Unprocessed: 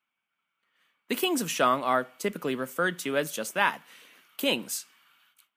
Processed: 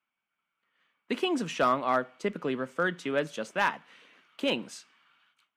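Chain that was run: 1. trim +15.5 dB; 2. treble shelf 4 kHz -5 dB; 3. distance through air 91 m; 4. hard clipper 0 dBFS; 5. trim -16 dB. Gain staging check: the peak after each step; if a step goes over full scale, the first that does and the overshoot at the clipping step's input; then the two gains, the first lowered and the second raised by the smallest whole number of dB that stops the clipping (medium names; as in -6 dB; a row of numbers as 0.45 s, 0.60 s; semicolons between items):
+6.0 dBFS, +5.0 dBFS, +4.5 dBFS, 0.0 dBFS, -16.0 dBFS; step 1, 4.5 dB; step 1 +10.5 dB, step 5 -11 dB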